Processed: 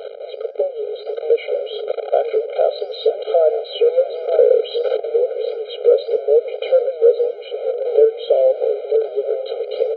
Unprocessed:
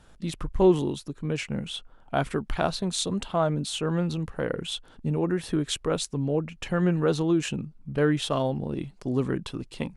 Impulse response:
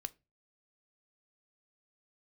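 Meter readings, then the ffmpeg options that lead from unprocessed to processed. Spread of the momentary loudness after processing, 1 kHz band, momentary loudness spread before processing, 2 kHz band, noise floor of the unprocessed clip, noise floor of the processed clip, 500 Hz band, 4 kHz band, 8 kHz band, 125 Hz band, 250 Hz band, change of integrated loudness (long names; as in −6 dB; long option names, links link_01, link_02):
10 LU, +3.0 dB, 10 LU, can't be measured, −54 dBFS, −33 dBFS, +14.0 dB, +0.5 dB, below −40 dB, below −40 dB, below −15 dB, +9.5 dB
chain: -filter_complex "[0:a]aeval=exprs='val(0)+0.5*0.0562*sgn(val(0))':channel_layout=same,asuperstop=centerf=1700:order=4:qfactor=4.4,asplit=2[link_01][link_02];[link_02]adelay=933,lowpass=frequency=2000:poles=1,volume=-13dB,asplit=2[link_03][link_04];[link_04]adelay=933,lowpass=frequency=2000:poles=1,volume=0.37,asplit=2[link_05][link_06];[link_06]adelay=933,lowpass=frequency=2000:poles=1,volume=0.37,asplit=2[link_07][link_08];[link_08]adelay=933,lowpass=frequency=2000:poles=1,volume=0.37[link_09];[link_01][link_03][link_05][link_07][link_09]amix=inputs=5:normalize=0,dynaudnorm=framelen=130:gausssize=7:maxgain=10dB,equalizer=frequency=300:width_type=o:width=1.4:gain=9,afftfilt=real='re*between(b*sr/4096,180,4400)':imag='im*between(b*sr/4096,180,4400)':win_size=4096:overlap=0.75,acompressor=threshold=-16dB:ratio=5,flanger=delay=8.3:depth=7.3:regen=87:speed=1.6:shape=triangular,lowshelf=frequency=740:width_type=q:width=3:gain=9.5,afftfilt=real='re*eq(mod(floor(b*sr/1024/410),2),1)':imag='im*eq(mod(floor(b*sr/1024/410),2),1)':win_size=1024:overlap=0.75,volume=-1dB"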